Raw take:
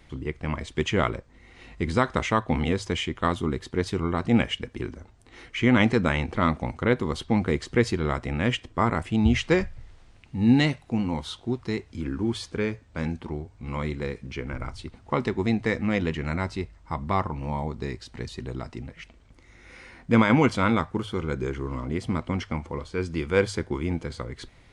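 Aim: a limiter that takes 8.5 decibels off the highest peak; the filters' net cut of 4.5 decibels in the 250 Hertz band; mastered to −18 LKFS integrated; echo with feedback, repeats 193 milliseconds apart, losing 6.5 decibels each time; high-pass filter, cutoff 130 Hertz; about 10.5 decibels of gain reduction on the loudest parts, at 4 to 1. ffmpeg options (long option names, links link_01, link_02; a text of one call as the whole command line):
ffmpeg -i in.wav -af "highpass=130,equalizer=frequency=250:width_type=o:gain=-5,acompressor=threshold=-30dB:ratio=4,alimiter=limit=-22.5dB:level=0:latency=1,aecho=1:1:193|386|579|772|965|1158:0.473|0.222|0.105|0.0491|0.0231|0.0109,volume=18.5dB" out.wav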